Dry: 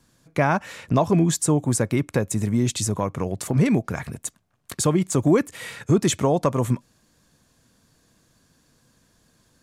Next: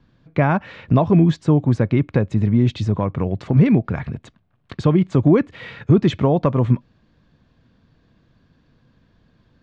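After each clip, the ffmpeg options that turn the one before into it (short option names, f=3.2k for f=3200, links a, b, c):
-af "lowpass=f=3.8k:w=0.5412,lowpass=f=3.8k:w=1.3066,lowshelf=f=290:g=8"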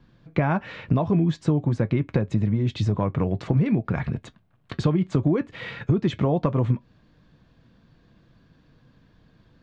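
-af "acompressor=threshold=-19dB:ratio=6,flanger=delay=5.5:depth=1.3:regen=-69:speed=0.5:shape=triangular,volume=5dB"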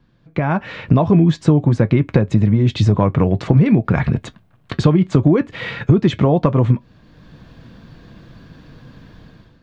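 -af "dynaudnorm=f=130:g=7:m=16.5dB,volume=-1dB"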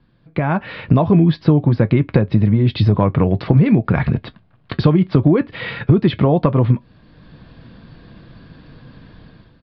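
-af "aresample=11025,aresample=44100"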